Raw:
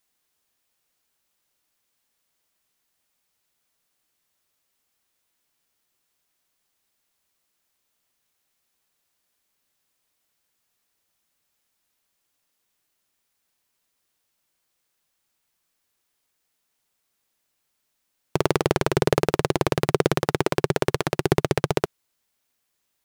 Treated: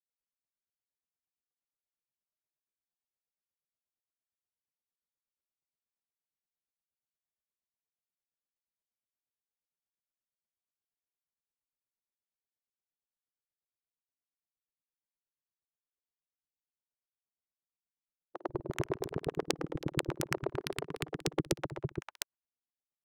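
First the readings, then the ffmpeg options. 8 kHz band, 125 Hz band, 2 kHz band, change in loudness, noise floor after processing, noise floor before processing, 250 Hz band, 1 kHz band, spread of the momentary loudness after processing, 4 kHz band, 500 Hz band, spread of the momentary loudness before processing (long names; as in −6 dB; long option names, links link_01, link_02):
−8.0 dB, −13.0 dB, −12.0 dB, −13.5 dB, below −85 dBFS, −76 dBFS, −12.0 dB, −15.5 dB, 7 LU, −10.0 dB, −14.5 dB, 4 LU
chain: -filter_complex "[0:a]afftfilt=real='re*pow(10,7/40*sin(2*PI*(1.4*log(max(b,1)*sr/1024/100)/log(2)-(0.61)*(pts-256)/sr)))':imag='im*pow(10,7/40*sin(2*PI*(1.4*log(max(b,1)*sr/1024/100)/log(2)-(0.61)*(pts-256)/sr)))':win_size=1024:overlap=0.75,agate=range=-15dB:threshold=-49dB:ratio=16:detection=peak,lowpass=frequency=1600:poles=1,adynamicequalizer=threshold=0.0126:dfrequency=300:dqfactor=2.4:tfrequency=300:tqfactor=2.4:attack=5:release=100:ratio=0.375:range=3:mode=boostabove:tftype=bell,acompressor=threshold=-21dB:ratio=5,aeval=exprs='(mod(2.99*val(0)+1,2)-1)/2.99':channel_layout=same,acrossover=split=320|1100[link_01][link_02][link_03];[link_01]adelay=140[link_04];[link_03]adelay=380[link_05];[link_04][link_02][link_05]amix=inputs=3:normalize=0,adynamicsmooth=sensitivity=2.5:basefreq=1200,aeval=exprs='val(0)*pow(10,-26*(0.5-0.5*cos(2*PI*8.5*n/s))/20)':channel_layout=same"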